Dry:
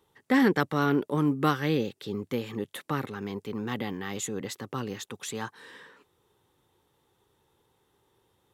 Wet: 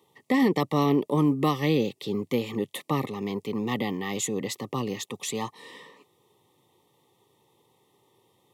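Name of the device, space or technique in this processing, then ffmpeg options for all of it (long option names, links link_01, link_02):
PA system with an anti-feedback notch: -af "highpass=frequency=110:width=0.5412,highpass=frequency=110:width=1.3066,asuperstop=centerf=1500:order=12:qfactor=2.7,alimiter=limit=-18dB:level=0:latency=1:release=122,volume=4.5dB"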